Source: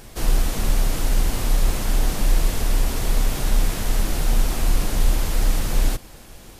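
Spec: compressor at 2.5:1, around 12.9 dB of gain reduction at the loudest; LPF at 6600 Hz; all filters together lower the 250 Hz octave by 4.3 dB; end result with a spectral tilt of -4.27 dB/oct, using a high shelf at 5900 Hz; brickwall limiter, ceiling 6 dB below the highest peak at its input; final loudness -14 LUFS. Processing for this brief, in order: LPF 6600 Hz; bell 250 Hz -6 dB; high shelf 5900 Hz +7.5 dB; compressor 2.5:1, threshold -33 dBFS; gain +25 dB; limiter -1 dBFS

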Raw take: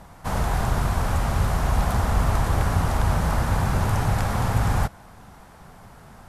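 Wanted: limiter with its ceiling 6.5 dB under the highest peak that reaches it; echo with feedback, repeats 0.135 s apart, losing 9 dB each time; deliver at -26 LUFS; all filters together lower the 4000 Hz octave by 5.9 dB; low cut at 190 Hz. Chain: HPF 190 Hz; bell 4000 Hz -8 dB; limiter -22 dBFS; feedback echo 0.135 s, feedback 35%, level -9 dB; gain +5 dB

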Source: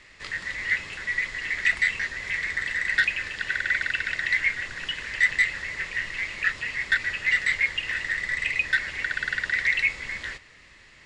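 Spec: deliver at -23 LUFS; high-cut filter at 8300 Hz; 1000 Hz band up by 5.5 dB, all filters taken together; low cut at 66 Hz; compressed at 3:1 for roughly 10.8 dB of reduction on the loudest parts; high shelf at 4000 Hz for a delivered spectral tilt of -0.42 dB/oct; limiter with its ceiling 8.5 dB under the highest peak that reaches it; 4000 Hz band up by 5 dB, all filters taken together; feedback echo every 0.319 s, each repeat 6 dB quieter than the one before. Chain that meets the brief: HPF 66 Hz; LPF 8300 Hz; bell 1000 Hz +7 dB; high shelf 4000 Hz +6 dB; bell 4000 Hz +3 dB; compressor 3:1, threshold -29 dBFS; limiter -21.5 dBFS; feedback echo 0.319 s, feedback 50%, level -6 dB; gain +7 dB

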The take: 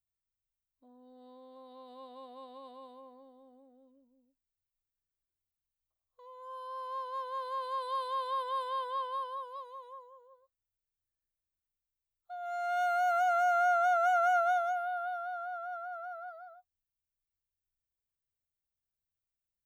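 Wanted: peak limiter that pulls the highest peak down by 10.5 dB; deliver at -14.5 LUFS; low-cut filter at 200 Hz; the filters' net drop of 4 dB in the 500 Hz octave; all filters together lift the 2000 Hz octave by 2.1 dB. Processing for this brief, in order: HPF 200 Hz; bell 500 Hz -8 dB; bell 2000 Hz +5 dB; gain +24.5 dB; limiter -7 dBFS

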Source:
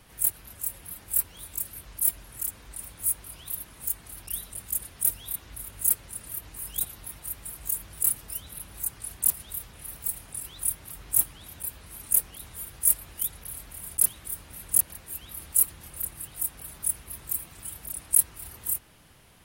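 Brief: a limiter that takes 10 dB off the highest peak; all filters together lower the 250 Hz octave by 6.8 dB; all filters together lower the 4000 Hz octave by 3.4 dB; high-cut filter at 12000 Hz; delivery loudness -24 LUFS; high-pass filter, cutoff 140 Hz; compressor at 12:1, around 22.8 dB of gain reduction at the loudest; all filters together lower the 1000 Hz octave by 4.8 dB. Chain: HPF 140 Hz; LPF 12000 Hz; bell 250 Hz -8.5 dB; bell 1000 Hz -5.5 dB; bell 4000 Hz -4 dB; compressor 12:1, threshold -42 dBFS; gain +24 dB; limiter -10.5 dBFS

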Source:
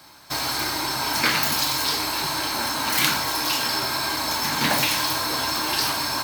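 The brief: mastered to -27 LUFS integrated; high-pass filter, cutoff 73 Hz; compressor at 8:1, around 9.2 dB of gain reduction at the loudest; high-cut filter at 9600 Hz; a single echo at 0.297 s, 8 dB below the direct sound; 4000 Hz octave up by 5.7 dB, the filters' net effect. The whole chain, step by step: HPF 73 Hz; LPF 9600 Hz; bell 4000 Hz +7 dB; compressor 8:1, threshold -24 dBFS; echo 0.297 s -8 dB; gain -2.5 dB

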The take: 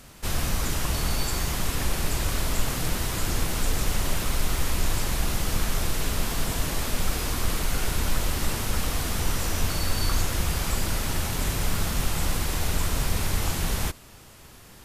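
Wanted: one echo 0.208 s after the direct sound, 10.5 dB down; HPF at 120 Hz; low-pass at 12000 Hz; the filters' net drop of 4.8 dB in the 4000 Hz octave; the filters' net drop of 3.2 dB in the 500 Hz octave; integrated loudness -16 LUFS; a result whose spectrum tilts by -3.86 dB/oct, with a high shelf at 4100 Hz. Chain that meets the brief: HPF 120 Hz; LPF 12000 Hz; bell 500 Hz -4 dB; bell 4000 Hz -4 dB; high shelf 4100 Hz -3.5 dB; echo 0.208 s -10.5 dB; gain +16 dB

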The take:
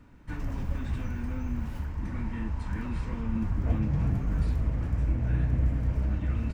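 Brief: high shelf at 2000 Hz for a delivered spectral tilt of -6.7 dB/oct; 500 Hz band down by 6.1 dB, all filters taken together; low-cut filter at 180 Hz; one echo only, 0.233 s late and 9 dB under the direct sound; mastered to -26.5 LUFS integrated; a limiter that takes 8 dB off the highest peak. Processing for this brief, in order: HPF 180 Hz; bell 500 Hz -7.5 dB; high shelf 2000 Hz -7 dB; limiter -32.5 dBFS; echo 0.233 s -9 dB; gain +14.5 dB

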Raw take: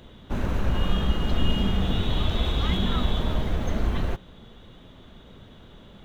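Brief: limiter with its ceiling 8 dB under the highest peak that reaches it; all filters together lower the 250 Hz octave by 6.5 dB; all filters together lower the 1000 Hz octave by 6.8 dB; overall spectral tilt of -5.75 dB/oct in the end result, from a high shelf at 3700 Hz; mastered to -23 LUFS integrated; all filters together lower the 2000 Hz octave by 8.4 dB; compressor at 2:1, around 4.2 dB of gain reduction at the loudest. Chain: bell 250 Hz -9 dB; bell 1000 Hz -6 dB; bell 2000 Hz -8 dB; high shelf 3700 Hz -4 dB; compressor 2:1, threshold -24 dBFS; gain +12 dB; limiter -11 dBFS

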